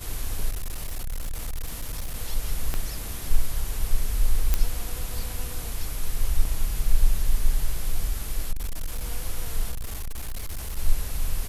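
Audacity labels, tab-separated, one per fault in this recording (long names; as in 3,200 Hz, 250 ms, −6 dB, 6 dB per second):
0.500000	2.160000	clipping −26 dBFS
2.740000	2.740000	click −13 dBFS
4.540000	4.540000	click −7 dBFS
6.450000	6.450000	drop-out 2.8 ms
8.510000	9.110000	clipping −24.5 dBFS
9.710000	10.790000	clipping −27 dBFS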